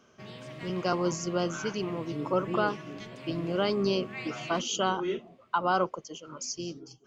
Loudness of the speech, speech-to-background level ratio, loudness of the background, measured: -31.0 LUFS, 12.0 dB, -43.0 LUFS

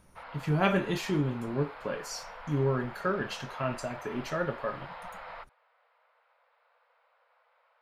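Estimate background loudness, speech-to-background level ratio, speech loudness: -45.0 LUFS, 13.0 dB, -32.0 LUFS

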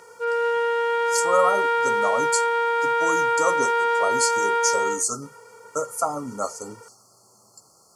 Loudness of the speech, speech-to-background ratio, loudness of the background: -26.5 LUFS, -4.5 dB, -22.0 LUFS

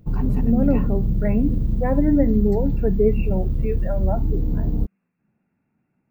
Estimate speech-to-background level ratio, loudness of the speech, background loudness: 1.0 dB, -23.5 LUFS, -24.5 LUFS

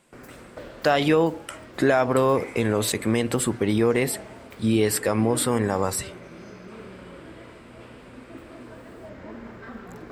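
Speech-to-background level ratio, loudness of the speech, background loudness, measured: 19.5 dB, -23.0 LUFS, -42.5 LUFS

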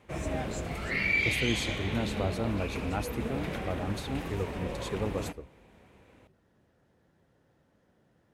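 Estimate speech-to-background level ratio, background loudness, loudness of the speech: -2.5 dB, -33.0 LUFS, -35.5 LUFS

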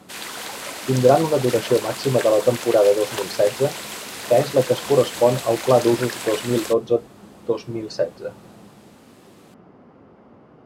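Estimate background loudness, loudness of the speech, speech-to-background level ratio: -30.5 LUFS, -20.0 LUFS, 10.5 dB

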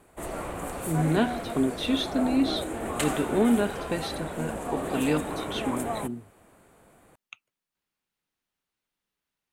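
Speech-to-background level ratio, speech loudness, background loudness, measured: 4.5 dB, -28.5 LUFS, -33.0 LUFS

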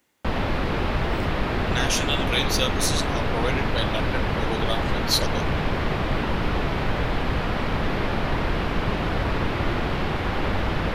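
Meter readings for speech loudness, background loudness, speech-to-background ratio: -27.0 LUFS, -25.5 LUFS, -1.5 dB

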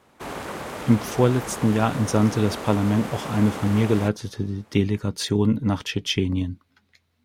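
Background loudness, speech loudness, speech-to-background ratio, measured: -33.5 LUFS, -23.0 LUFS, 10.5 dB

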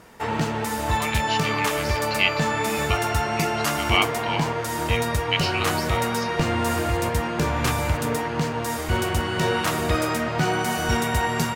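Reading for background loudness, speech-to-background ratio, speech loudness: -24.0 LUFS, -4.0 dB, -28.0 LUFS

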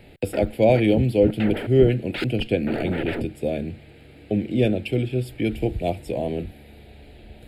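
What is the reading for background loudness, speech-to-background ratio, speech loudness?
-32.0 LUFS, 9.0 dB, -23.0 LUFS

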